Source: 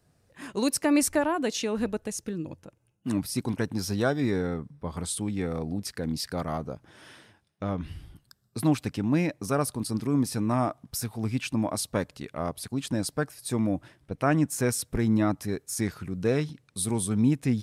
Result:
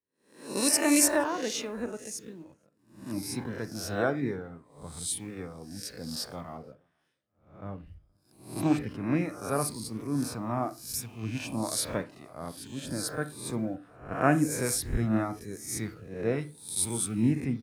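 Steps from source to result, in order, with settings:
peak hold with a rise ahead of every peak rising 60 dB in 0.98 s
reverb reduction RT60 0.63 s
in parallel at −11.5 dB: bit reduction 7 bits
on the sum: single-tap delay 473 ms −24 dB
on a send at −10 dB: convolution reverb RT60 0.40 s, pre-delay 31 ms
on the sum: multiband upward and downward expander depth 100%
level −8 dB

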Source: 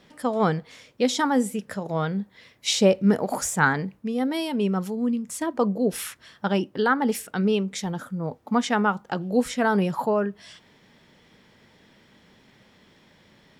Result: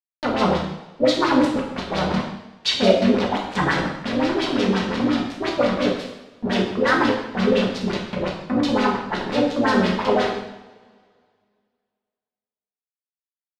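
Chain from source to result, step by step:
pitch-shifted copies added −12 semitones −13 dB, +3 semitones −1 dB
bit reduction 4 bits
auto-filter low-pass sine 5.7 Hz 300–4,600 Hz
coupled-rooms reverb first 0.78 s, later 2.2 s, from −20 dB, DRR −2 dB
level −5.5 dB

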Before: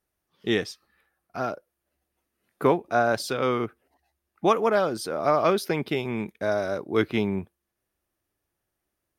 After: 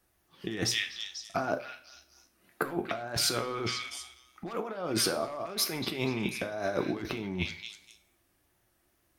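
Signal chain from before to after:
parametric band 480 Hz −5 dB 0.26 octaves
wave folding −13.5 dBFS
tape wow and flutter 72 cents
echo through a band-pass that steps 245 ms, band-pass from 2,900 Hz, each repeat 0.7 octaves, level −7.5 dB
compressor whose output falls as the input rises −35 dBFS, ratio −1
flanger 0.86 Hz, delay 3.8 ms, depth 5.7 ms, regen +86%
on a send at −7 dB: convolution reverb, pre-delay 3 ms
on the sum: level +5.5 dB

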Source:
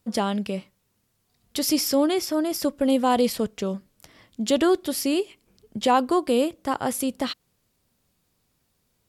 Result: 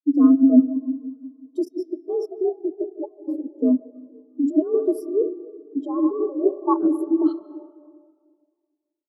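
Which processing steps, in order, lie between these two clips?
octave-band graphic EQ 125/250/1,000/2,000/4,000/8,000 Hz +9/+7/+11/−8/−4/+3 dB
repeating echo 64 ms, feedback 57%, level −11 dB
frequency shifter +64 Hz
rotating-speaker cabinet horn 1.2 Hz
soft clipping −6 dBFS, distortion −22 dB
compressor whose output falls as the input rises −20 dBFS, ratio −0.5
0:02.27–0:03.07: gain on a spectral selection 910–9,500 Hz −10 dB
0:01.65–0:03.59: output level in coarse steps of 23 dB
low-shelf EQ 460 Hz −7 dB
convolution reverb RT60 4.5 s, pre-delay 115 ms, DRR 4 dB
every bin expanded away from the loudest bin 2.5 to 1
level +7 dB

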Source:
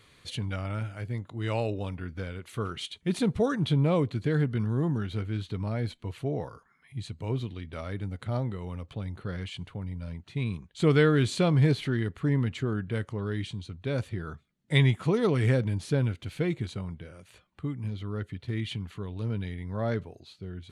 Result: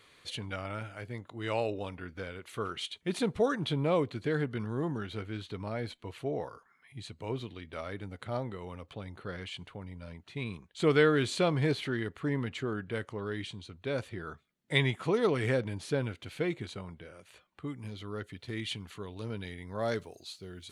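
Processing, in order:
bass and treble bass −10 dB, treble −2 dB, from 0:17.66 treble +5 dB, from 0:19.80 treble +13 dB

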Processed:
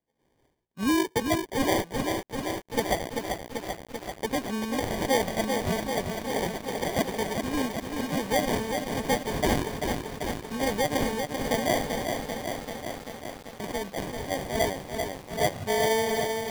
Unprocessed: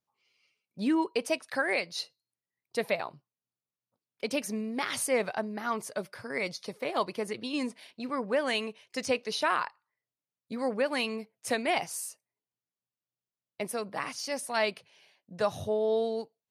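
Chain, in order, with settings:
0:12.04–0:13.64: treble cut that deepens with the level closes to 310 Hz, closed at −39 dBFS
decimation without filtering 33×
feedback echo at a low word length 389 ms, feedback 80%, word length 8 bits, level −5 dB
level +2.5 dB

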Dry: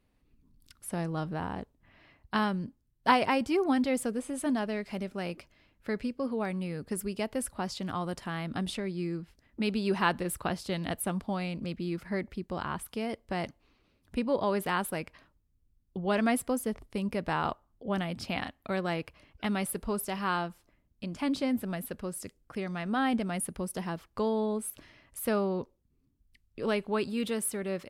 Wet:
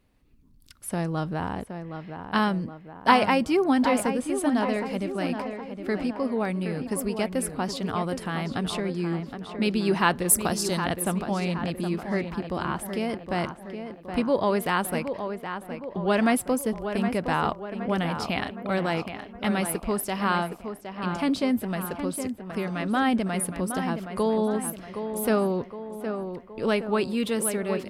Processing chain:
0:10.28–0:10.84: high shelf with overshoot 4,400 Hz +11.5 dB, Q 1.5
tape delay 767 ms, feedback 59%, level −7 dB, low-pass 2,300 Hz
level +5 dB

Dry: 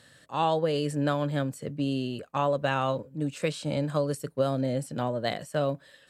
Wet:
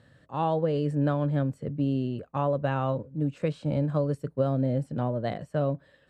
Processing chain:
low-pass filter 1,000 Hz 6 dB per octave
low-shelf EQ 130 Hz +9.5 dB

